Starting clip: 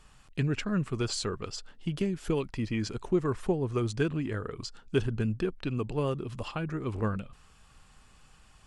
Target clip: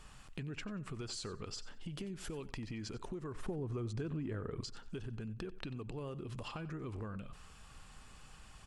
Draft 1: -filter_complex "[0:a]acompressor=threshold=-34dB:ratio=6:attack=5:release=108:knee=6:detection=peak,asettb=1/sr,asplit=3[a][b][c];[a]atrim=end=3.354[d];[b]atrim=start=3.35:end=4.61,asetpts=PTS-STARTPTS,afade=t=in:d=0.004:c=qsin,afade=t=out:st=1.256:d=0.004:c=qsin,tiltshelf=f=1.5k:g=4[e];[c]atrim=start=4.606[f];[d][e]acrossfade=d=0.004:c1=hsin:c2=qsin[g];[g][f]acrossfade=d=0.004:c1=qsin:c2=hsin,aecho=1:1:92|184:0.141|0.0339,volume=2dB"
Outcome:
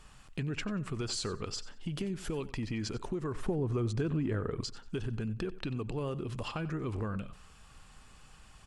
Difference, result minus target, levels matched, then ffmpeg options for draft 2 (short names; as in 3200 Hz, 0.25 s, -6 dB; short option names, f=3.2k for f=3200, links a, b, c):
compressor: peak gain reduction -8 dB
-filter_complex "[0:a]acompressor=threshold=-43.5dB:ratio=6:attack=5:release=108:knee=6:detection=peak,asettb=1/sr,asplit=3[a][b][c];[a]atrim=end=3.354[d];[b]atrim=start=3.35:end=4.61,asetpts=PTS-STARTPTS,afade=t=in:d=0.004:c=qsin,afade=t=out:st=1.256:d=0.004:c=qsin,tiltshelf=f=1.5k:g=4[e];[c]atrim=start=4.606[f];[d][e]acrossfade=d=0.004:c1=hsin:c2=qsin[g];[g][f]acrossfade=d=0.004:c1=qsin:c2=hsin,aecho=1:1:92|184:0.141|0.0339,volume=2dB"